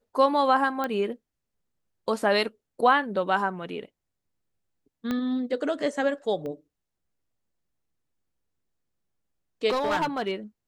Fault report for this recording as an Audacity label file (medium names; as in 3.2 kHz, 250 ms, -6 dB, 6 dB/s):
0.840000	0.840000	pop -16 dBFS
5.110000	5.110000	pop -16 dBFS
6.460000	6.460000	pop -26 dBFS
9.690000	10.320000	clipped -21.5 dBFS